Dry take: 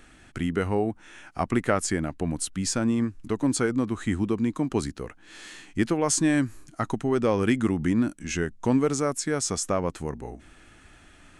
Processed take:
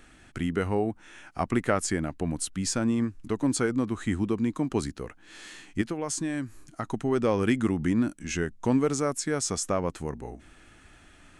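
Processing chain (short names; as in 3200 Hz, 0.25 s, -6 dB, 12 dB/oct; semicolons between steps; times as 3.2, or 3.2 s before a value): 5.81–6.94 compressor 2.5:1, threshold -29 dBFS, peak gain reduction 7.5 dB; gain -1.5 dB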